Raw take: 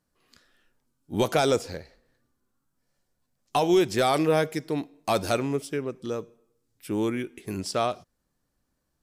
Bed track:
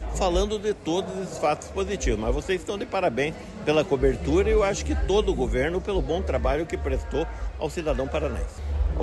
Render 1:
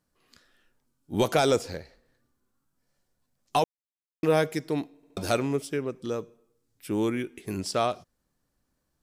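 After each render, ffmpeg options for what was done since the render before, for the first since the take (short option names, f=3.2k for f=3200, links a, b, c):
-filter_complex "[0:a]asplit=6[a][b][c][d][e][f];[a]atrim=end=3.64,asetpts=PTS-STARTPTS,afade=t=out:st=3.636:d=0.004:c=hsin[g];[b]atrim=start=3.64:end=4.23,asetpts=PTS-STARTPTS,volume=0[h];[c]atrim=start=4.23:end=5.032,asetpts=PTS-STARTPTS,afade=t=in:d=0.004:c=hsin[i];[d]atrim=start=4.958:end=5.032[j];[e]atrim=start=4.958:end=5.032[k];[f]atrim=start=5.168[l];[g][h][i]concat=n=3:v=0:a=1[m];[m][j]acrossfade=d=0.004:c1=hsin:c2=hsin[n];[n][k]acrossfade=d=0.004:c1=hsin:c2=hsin[o];[o][l]acrossfade=d=0.004:c1=hsin:c2=hsin"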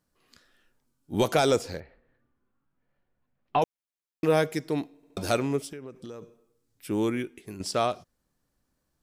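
-filter_complex "[0:a]asettb=1/sr,asplit=3[a][b][c];[a]atrim=end=1.804[d];[b]atrim=start=1.8:end=3.62,asetpts=PTS-STARTPTS,afade=t=in:d=0.004:c=qsin,afade=t=out:st=1.816:d=0.004:c=qsin,lowpass=f=2.8k:w=0.5412,lowpass=f=2.8k:w=1.3066[e];[c]atrim=start=3.616[f];[d][e]acrossfade=d=0.004:c1=hsin:c2=qsin[g];[g][f]acrossfade=d=0.004:c1=qsin:c2=hsin,asplit=3[h][i][j];[h]afade=t=out:st=5.7:d=0.02[k];[i]acompressor=threshold=-37dB:ratio=8:attack=3.2:release=140:knee=1:detection=peak,afade=t=in:st=5.7:d=0.02,afade=t=out:st=6.21:d=0.02[l];[j]afade=t=in:st=6.21:d=0.02[m];[k][l][m]amix=inputs=3:normalize=0,asplit=2[n][o];[n]atrim=end=7.6,asetpts=PTS-STARTPTS,afade=t=out:st=7.2:d=0.4:silence=0.266073[p];[o]atrim=start=7.6,asetpts=PTS-STARTPTS,afade=t=in:d=0.004:c=hsin:silence=0.266073[q];[p][q]concat=n=2:v=0:a=1"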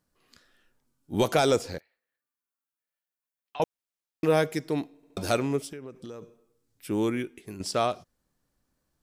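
-filter_complex "[0:a]asettb=1/sr,asplit=3[a][b][c];[a]atrim=end=1.784[d];[b]atrim=start=1.78:end=3.6,asetpts=PTS-STARTPTS,afade=t=in:d=0.004:c=qsin,afade=t=out:st=1.816:d=0.004:c=qsin,aderivative[e];[c]atrim=start=3.596[f];[d][e]acrossfade=d=0.004:c1=hsin:c2=qsin[g];[g][f]acrossfade=d=0.004:c1=qsin:c2=hsin"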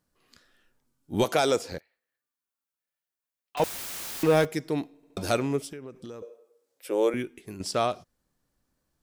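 -filter_complex "[0:a]asettb=1/sr,asplit=3[a][b][c];[a]atrim=end=1.244[d];[b]atrim=start=1.24:end=1.72,asetpts=PTS-STARTPTS,afade=t=in:d=0.004:c=qsin,afade=t=out:st=0.476:d=0.004:c=qsin,highpass=f=270:p=1[e];[c]atrim=start=1.716[f];[d][e]acrossfade=d=0.004:c1=hsin:c2=qsin[g];[g][f]acrossfade=d=0.004:c1=qsin:c2=hsin,asettb=1/sr,asplit=3[h][i][j];[h]atrim=end=3.574[k];[i]atrim=start=3.57:end=4.45,asetpts=PTS-STARTPTS,afade=t=in:d=0.004:c=qsin,afade=t=out:st=0.876:d=0.004:c=qsin,aeval=exprs='val(0)+0.5*0.0398*sgn(val(0))':c=same[l];[j]atrim=start=4.446[m];[k][l]acrossfade=d=0.004:c1=hsin:c2=qsin[n];[n][m]acrossfade=d=0.004:c1=qsin:c2=hsin,asettb=1/sr,asplit=3[o][p][q];[o]atrim=end=6.224[r];[p]atrim=start=6.22:end=7.14,asetpts=PTS-STARTPTS,afade=t=in:d=0.004:c=qsin,afade=t=out:st=0.916:d=0.004:c=qsin,highpass=f=520:t=q:w=5.2[s];[q]atrim=start=7.136[t];[r][s]acrossfade=d=0.004:c1=hsin:c2=qsin[u];[u][t]acrossfade=d=0.004:c1=qsin:c2=hsin"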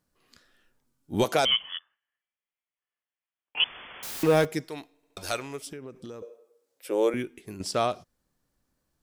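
-filter_complex "[0:a]asettb=1/sr,asplit=3[a][b][c];[a]atrim=end=1.454[d];[b]atrim=start=1.45:end=4.03,asetpts=PTS-STARTPTS,afade=t=in:d=0.004:c=qsin,afade=t=out:st=2.576:d=0.004:c=qsin,lowpass=f=3k:t=q:w=0.5098,lowpass=f=3k:t=q:w=0.6013,lowpass=f=3k:t=q:w=0.9,lowpass=f=3k:t=q:w=2.563,afreqshift=-3500[e];[c]atrim=start=4.026[f];[d][e]acrossfade=d=0.004:c1=hsin:c2=qsin[g];[g][f]acrossfade=d=0.004:c1=qsin:c2=hsin,asettb=1/sr,asplit=3[h][i][j];[h]atrim=end=4.654[k];[i]atrim=start=4.65:end=5.67,asetpts=PTS-STARTPTS,afade=t=in:d=0.004:c=qsin,afade=t=out:st=1.016:d=0.004:c=qsin,equalizer=f=200:t=o:w=2.9:g=-14.5[l];[j]atrim=start=5.666[m];[k][l]acrossfade=d=0.004:c1=hsin:c2=qsin[n];[n][m]acrossfade=d=0.004:c1=qsin:c2=hsin"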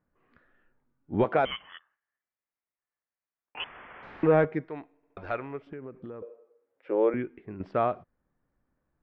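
-af "lowpass=f=2k:w=0.5412,lowpass=f=2k:w=1.3066"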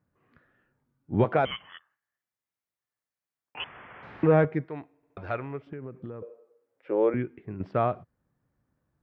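-af "highpass=44,equalizer=f=120:w=1.3:g=8"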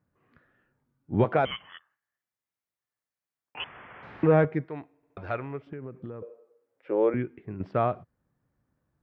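-af anull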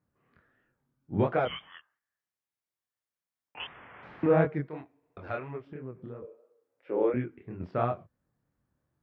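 -af "flanger=delay=22.5:depth=6.7:speed=2.9"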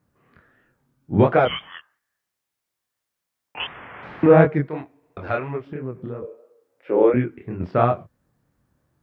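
-af "volume=10.5dB"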